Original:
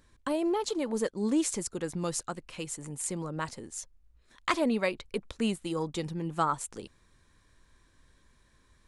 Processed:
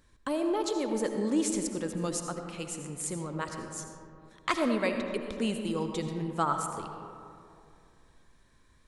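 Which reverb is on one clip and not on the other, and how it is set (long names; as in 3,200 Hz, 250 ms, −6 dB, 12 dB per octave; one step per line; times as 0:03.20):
comb and all-pass reverb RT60 2.6 s, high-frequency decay 0.35×, pre-delay 40 ms, DRR 5 dB
level −1 dB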